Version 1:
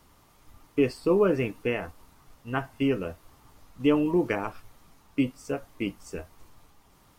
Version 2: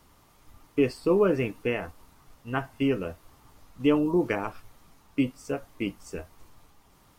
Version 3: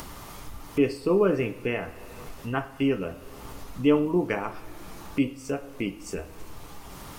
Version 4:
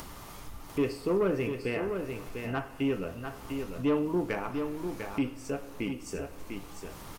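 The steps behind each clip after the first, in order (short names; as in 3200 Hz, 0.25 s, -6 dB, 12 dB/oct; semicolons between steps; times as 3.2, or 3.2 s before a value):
spectral gain 3.98–4.21, 1500–3300 Hz -12 dB
two-slope reverb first 0.58 s, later 2.2 s, from -18 dB, DRR 9.5 dB; upward compressor, threshold -26 dBFS
soft clip -16.5 dBFS, distortion -16 dB; on a send: echo 0.698 s -6.5 dB; on the sum: gain -3.5 dB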